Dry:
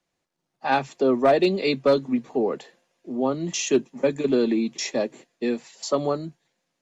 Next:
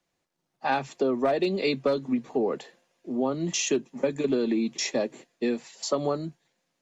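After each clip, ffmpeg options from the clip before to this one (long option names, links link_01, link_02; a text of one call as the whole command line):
ffmpeg -i in.wav -af "acompressor=threshold=-21dB:ratio=6" out.wav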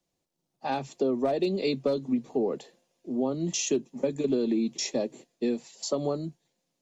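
ffmpeg -i in.wav -af "equalizer=frequency=1600:width=0.8:gain=-10.5" out.wav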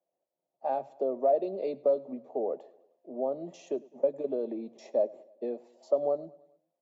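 ffmpeg -i in.wav -af "bandpass=frequency=620:width_type=q:width=4.5:csg=0,aecho=1:1:103|206|309|412:0.075|0.0405|0.0219|0.0118,volume=6.5dB" out.wav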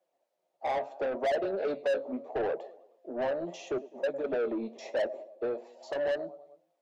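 ffmpeg -i in.wav -filter_complex "[0:a]flanger=delay=5.1:depth=8.7:regen=62:speed=0.75:shape=triangular,asplit=2[link_01][link_02];[link_02]highpass=frequency=720:poles=1,volume=26dB,asoftclip=type=tanh:threshold=-17.5dB[link_03];[link_01][link_03]amix=inputs=2:normalize=0,lowpass=frequency=2900:poles=1,volume=-6dB,flanger=delay=0.5:depth=4.6:regen=-76:speed=0.33:shape=triangular" out.wav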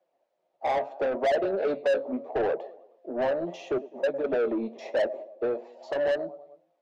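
ffmpeg -i in.wav -af "adynamicsmooth=sensitivity=4:basefreq=4300,volume=4.5dB" out.wav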